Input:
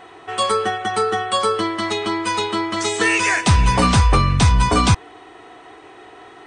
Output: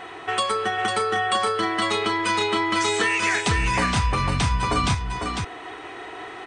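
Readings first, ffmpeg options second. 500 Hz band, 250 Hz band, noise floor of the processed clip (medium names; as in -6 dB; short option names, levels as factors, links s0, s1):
-4.0 dB, -6.0 dB, -38 dBFS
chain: -af "equalizer=f=2100:w=0.82:g=4.5,acompressor=threshold=0.0631:ratio=5,aecho=1:1:500:0.562,volume=1.33"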